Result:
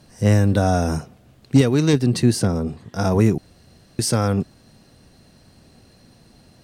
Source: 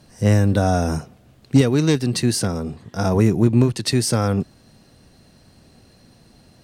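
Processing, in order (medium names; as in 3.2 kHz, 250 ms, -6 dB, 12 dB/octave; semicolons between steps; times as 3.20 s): 1.93–2.68 s: tilt shelf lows +3.5 dB; 3.38–3.99 s: room tone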